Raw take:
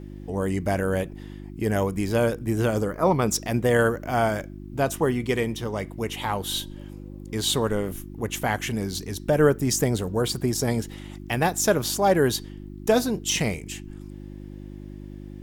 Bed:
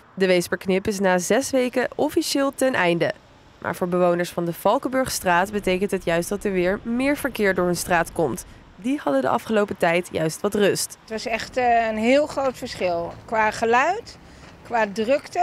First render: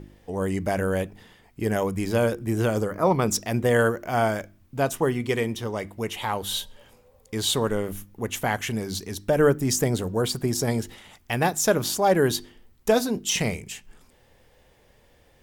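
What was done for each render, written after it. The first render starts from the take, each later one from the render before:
hum removal 50 Hz, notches 7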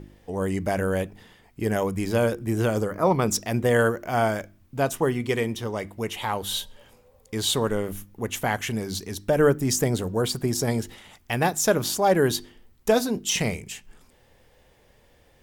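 no processing that can be heard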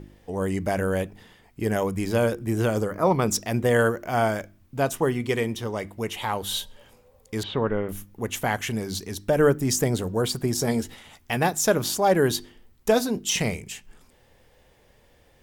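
0:07.43–0:07.89: low-pass filter 2,700 Hz 24 dB per octave
0:10.56–0:11.37: double-tracking delay 13 ms −8 dB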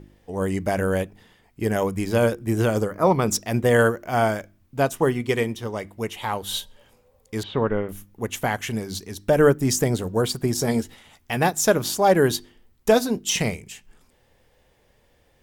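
in parallel at −1 dB: brickwall limiter −15 dBFS, peak gain reduction 7.5 dB
on the sum: expander for the loud parts 1.5 to 1, over −29 dBFS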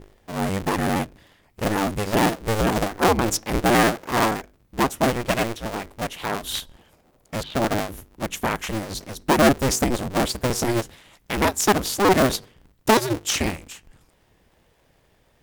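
sub-harmonics by changed cycles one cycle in 2, inverted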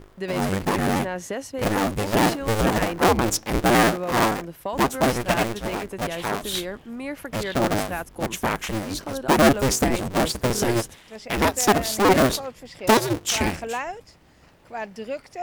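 mix in bed −11 dB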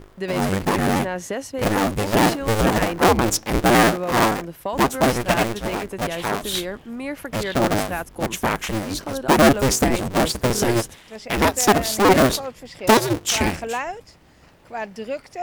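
level +2.5 dB
brickwall limiter −3 dBFS, peak gain reduction 1 dB

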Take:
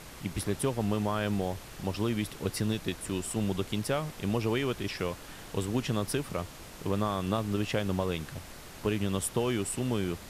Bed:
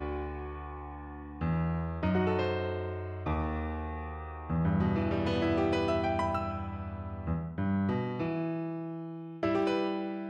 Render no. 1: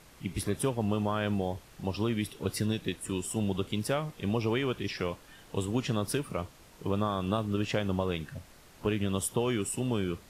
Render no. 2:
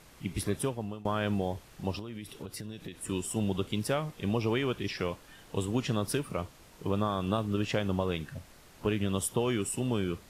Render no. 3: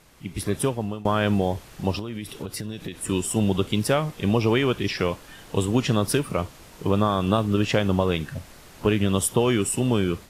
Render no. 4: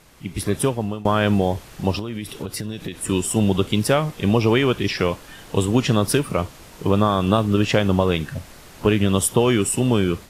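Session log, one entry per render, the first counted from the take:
noise reduction from a noise print 9 dB
0:00.54–0:01.05: fade out, to −21 dB; 0:01.99–0:03.00: downward compressor 16 to 1, threshold −36 dBFS
automatic gain control gain up to 8.5 dB
level +3.5 dB

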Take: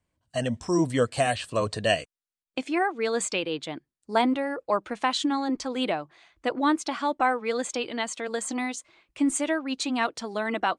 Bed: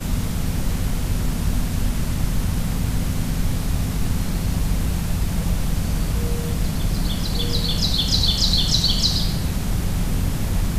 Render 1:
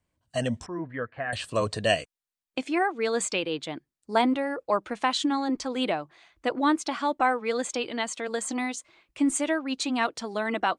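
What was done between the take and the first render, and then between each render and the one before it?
0:00.66–0:01.33: transistor ladder low-pass 1,900 Hz, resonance 65%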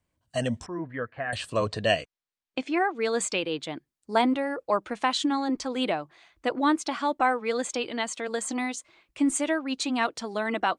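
0:01.54–0:02.95: low-pass filter 5,600 Hz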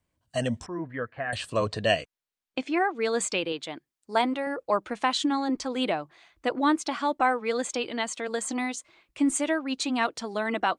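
0:03.52–0:04.47: low-shelf EQ 280 Hz −8.5 dB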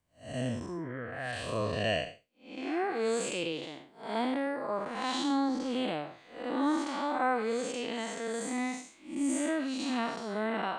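spectrum smeared in time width 204 ms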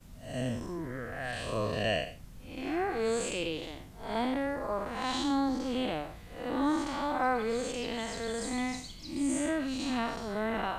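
mix in bed −28 dB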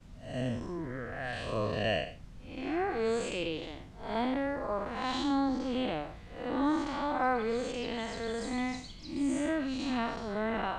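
high-frequency loss of the air 78 metres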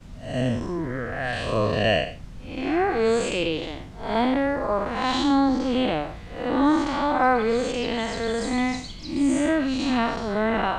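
level +9.5 dB

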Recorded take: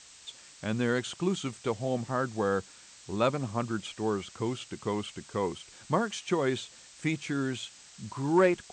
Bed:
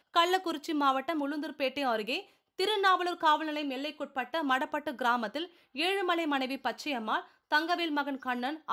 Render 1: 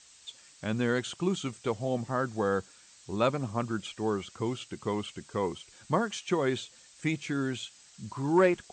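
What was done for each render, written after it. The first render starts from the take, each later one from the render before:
broadband denoise 6 dB, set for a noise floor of −53 dBFS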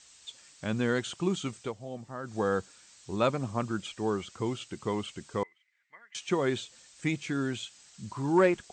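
0:01.61–0:02.35: duck −9.5 dB, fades 0.12 s
0:05.43–0:06.15: resonant band-pass 2,000 Hz, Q 17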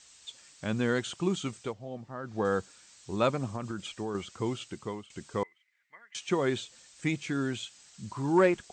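0:01.73–0:02.45: high-frequency loss of the air 120 metres
0:03.46–0:04.15: downward compressor 10 to 1, threshold −30 dBFS
0:04.70–0:05.10: fade out, to −20.5 dB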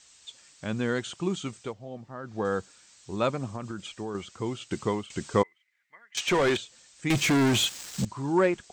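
0:04.71–0:05.42: clip gain +9 dB
0:06.17–0:06.57: mid-hump overdrive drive 22 dB, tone 5,500 Hz, clips at −16 dBFS
0:07.10–0:08.05: leveller curve on the samples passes 5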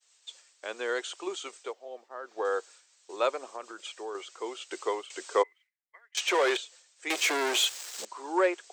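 Butterworth high-pass 390 Hz 36 dB per octave
downward expander −49 dBFS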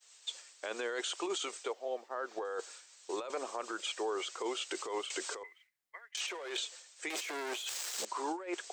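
compressor whose output falls as the input rises −36 dBFS, ratio −1
brickwall limiter −27 dBFS, peak gain reduction 8 dB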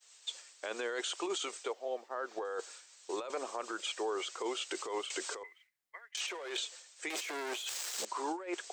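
no processing that can be heard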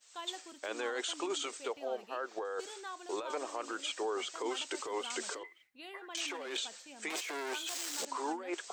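mix in bed −19.5 dB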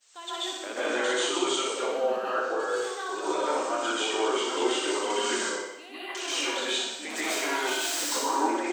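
repeating echo 61 ms, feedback 58%, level −5 dB
dense smooth reverb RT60 0.6 s, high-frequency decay 0.8×, pre-delay 120 ms, DRR −8.5 dB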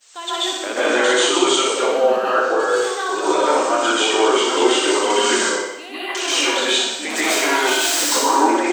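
level +11 dB
brickwall limiter −3 dBFS, peak gain reduction 1 dB

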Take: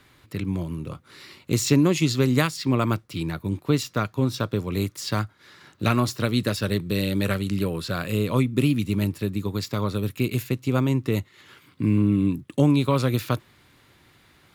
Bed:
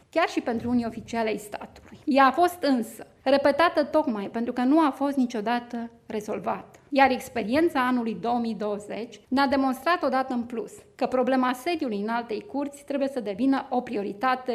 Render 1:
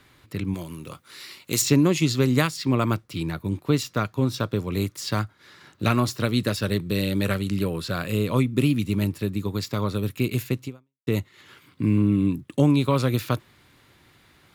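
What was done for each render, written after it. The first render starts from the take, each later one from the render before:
0:00.54–0:01.62: spectral tilt +2.5 dB per octave
0:10.65–0:11.07: fade out exponential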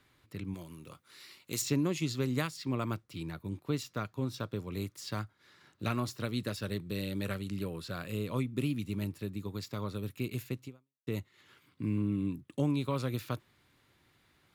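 level −11.5 dB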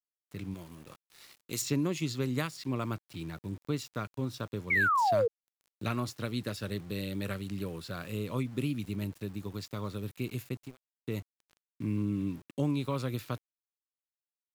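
centre clipping without the shift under −50.5 dBFS
0:04.70–0:05.28: sound drawn into the spectrogram fall 440–2,300 Hz −26 dBFS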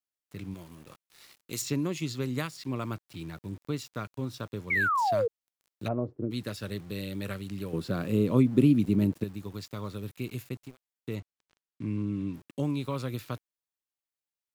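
0:05.87–0:06.30: low-pass with resonance 700 Hz → 300 Hz, resonance Q 4.3
0:07.73–0:09.24: parametric band 260 Hz +13 dB 2.8 octaves
0:11.15–0:12.34: high-frequency loss of the air 58 metres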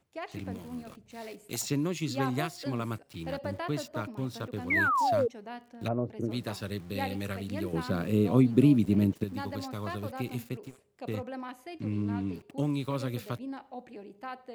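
mix in bed −16.5 dB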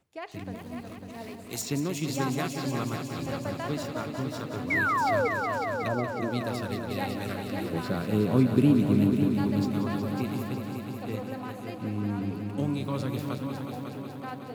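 echo machine with several playback heads 183 ms, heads all three, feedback 66%, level −10.5 dB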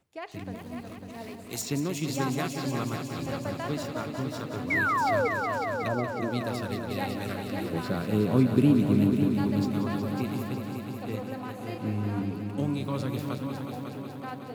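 0:11.57–0:12.22: double-tracking delay 37 ms −4 dB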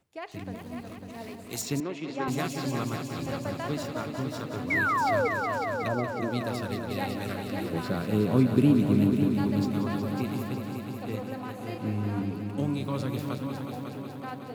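0:01.80–0:02.28: band-pass filter 290–2,600 Hz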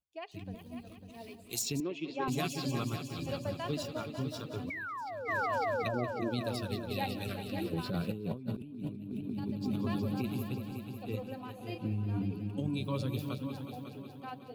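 spectral dynamics exaggerated over time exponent 1.5
compressor whose output falls as the input rises −35 dBFS, ratio −1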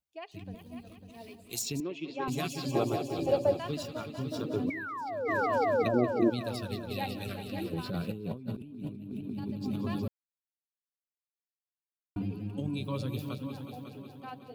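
0:02.75–0:03.59: flat-topped bell 520 Hz +13 dB
0:04.31–0:06.30: parametric band 330 Hz +11.5 dB 1.7 octaves
0:10.08–0:12.16: silence

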